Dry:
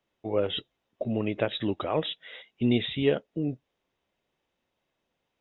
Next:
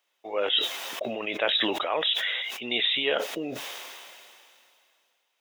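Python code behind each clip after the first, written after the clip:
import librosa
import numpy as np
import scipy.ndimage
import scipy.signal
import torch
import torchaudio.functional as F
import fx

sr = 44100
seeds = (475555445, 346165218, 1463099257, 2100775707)

y = scipy.signal.sosfilt(scipy.signal.butter(2, 700.0, 'highpass', fs=sr, output='sos'), x)
y = fx.high_shelf(y, sr, hz=3100.0, db=9.0)
y = fx.sustainer(y, sr, db_per_s=24.0)
y = F.gain(torch.from_numpy(y), 3.5).numpy()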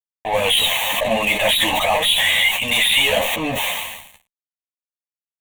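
y = fx.fuzz(x, sr, gain_db=35.0, gate_db=-41.0)
y = fx.fixed_phaser(y, sr, hz=1400.0, stages=6)
y = fx.ensemble(y, sr)
y = F.gain(torch.from_numpy(y), 5.0).numpy()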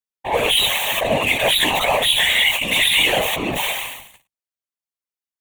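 y = fx.whisperise(x, sr, seeds[0])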